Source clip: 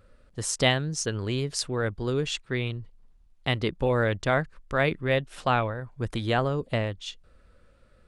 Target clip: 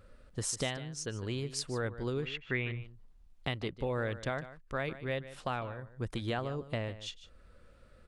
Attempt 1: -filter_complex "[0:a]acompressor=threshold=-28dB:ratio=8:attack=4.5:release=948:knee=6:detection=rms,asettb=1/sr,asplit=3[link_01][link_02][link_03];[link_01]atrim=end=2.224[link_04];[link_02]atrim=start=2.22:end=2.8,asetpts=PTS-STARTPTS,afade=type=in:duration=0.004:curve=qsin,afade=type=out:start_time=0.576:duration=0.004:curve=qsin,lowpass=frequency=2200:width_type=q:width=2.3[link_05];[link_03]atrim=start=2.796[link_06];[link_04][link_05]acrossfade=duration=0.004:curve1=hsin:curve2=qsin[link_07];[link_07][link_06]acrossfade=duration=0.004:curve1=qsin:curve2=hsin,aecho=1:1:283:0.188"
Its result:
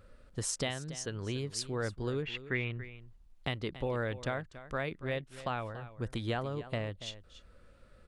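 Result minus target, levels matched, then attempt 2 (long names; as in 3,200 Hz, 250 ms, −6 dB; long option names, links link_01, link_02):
echo 132 ms late
-filter_complex "[0:a]acompressor=threshold=-28dB:ratio=8:attack=4.5:release=948:knee=6:detection=rms,asettb=1/sr,asplit=3[link_01][link_02][link_03];[link_01]atrim=end=2.224[link_04];[link_02]atrim=start=2.22:end=2.8,asetpts=PTS-STARTPTS,afade=type=in:duration=0.004:curve=qsin,afade=type=out:start_time=0.576:duration=0.004:curve=qsin,lowpass=frequency=2200:width_type=q:width=2.3[link_05];[link_03]atrim=start=2.796[link_06];[link_04][link_05]acrossfade=duration=0.004:curve1=hsin:curve2=qsin[link_07];[link_07][link_06]acrossfade=duration=0.004:curve1=qsin:curve2=hsin,aecho=1:1:151:0.188"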